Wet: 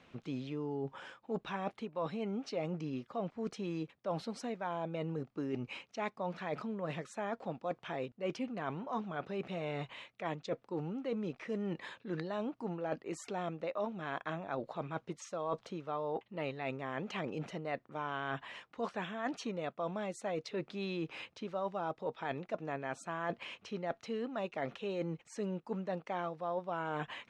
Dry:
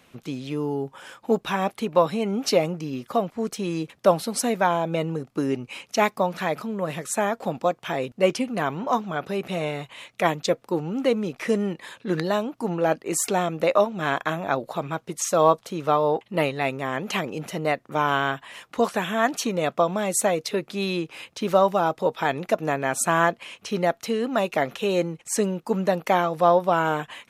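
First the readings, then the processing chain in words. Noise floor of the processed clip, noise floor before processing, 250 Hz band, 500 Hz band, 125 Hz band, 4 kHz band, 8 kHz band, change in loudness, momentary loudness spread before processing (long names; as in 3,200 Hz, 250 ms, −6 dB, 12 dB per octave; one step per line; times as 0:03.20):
−71 dBFS, −61 dBFS, −12.5 dB, −15.5 dB, −11.5 dB, −16.0 dB, −25.0 dB, −15.0 dB, 8 LU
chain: reversed playback
downward compressor 5 to 1, threshold −31 dBFS, peak gain reduction 17.5 dB
reversed playback
high-frequency loss of the air 130 metres
level −4 dB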